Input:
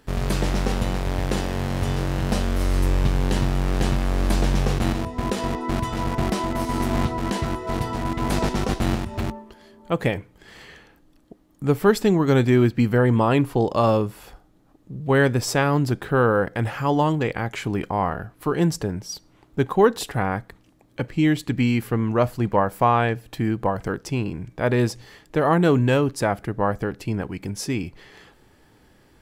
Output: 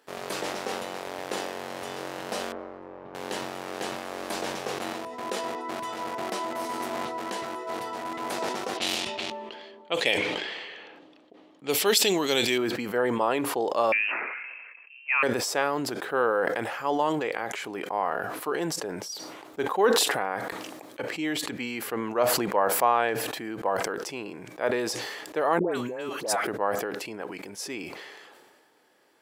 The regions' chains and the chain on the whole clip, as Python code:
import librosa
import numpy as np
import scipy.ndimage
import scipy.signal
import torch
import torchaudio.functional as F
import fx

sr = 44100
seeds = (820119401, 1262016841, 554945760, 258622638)

y = fx.chain(x, sr, fx.lowpass(hz=1100.0, slope=12),
    fx.level_steps(step_db=12), at=(2.52, 3.15))
y = fx.chain(y, sr, fx.env_lowpass(base_hz=1400.0, full_db=-16.0),
    fx.high_shelf_res(hz=2100.0, db=12.0, q=1.5), at=(8.77, 12.58))
y = fx.chain(y, sr, fx.highpass(hz=340.0, slope=12),
    fx.freq_invert(carrier_hz=2900), at=(13.92, 15.23))
y = fx.chain(y, sr, fx.high_shelf(hz=4200.0, db=5.0),
    fx.over_compress(threshold_db=-23.0, ratio=-0.5),
    fx.dispersion(late='highs', ms=126.0, hz=1100.0), at=(25.59, 26.47))
y = scipy.signal.sosfilt(scipy.signal.cheby1(2, 1.0, 490.0, 'highpass', fs=sr, output='sos'), y)
y = fx.sustainer(y, sr, db_per_s=31.0)
y = y * 10.0 ** (-4.0 / 20.0)